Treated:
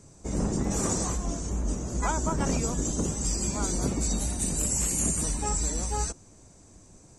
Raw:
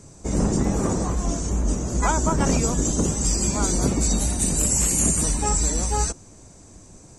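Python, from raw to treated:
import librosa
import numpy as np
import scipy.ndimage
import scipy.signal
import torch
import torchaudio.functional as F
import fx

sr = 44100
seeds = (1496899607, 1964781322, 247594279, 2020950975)

y = fx.high_shelf(x, sr, hz=2200.0, db=11.5, at=(0.7, 1.16), fade=0.02)
y = y * 10.0 ** (-6.5 / 20.0)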